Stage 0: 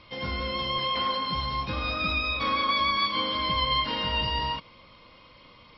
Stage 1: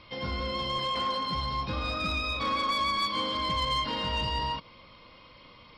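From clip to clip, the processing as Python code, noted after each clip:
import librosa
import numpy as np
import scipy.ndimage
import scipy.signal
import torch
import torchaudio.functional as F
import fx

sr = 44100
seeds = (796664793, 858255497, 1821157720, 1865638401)

y = fx.dynamic_eq(x, sr, hz=2300.0, q=1.2, threshold_db=-41.0, ratio=4.0, max_db=-4)
y = 10.0 ** (-21.0 / 20.0) * np.tanh(y / 10.0 ** (-21.0 / 20.0))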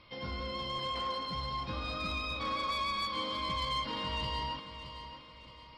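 y = fx.echo_feedback(x, sr, ms=620, feedback_pct=40, wet_db=-11)
y = y * 10.0 ** (-6.0 / 20.0)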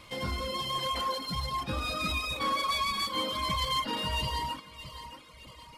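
y = fx.cvsd(x, sr, bps=64000)
y = fx.dereverb_blind(y, sr, rt60_s=1.6)
y = y * 10.0 ** (7.0 / 20.0)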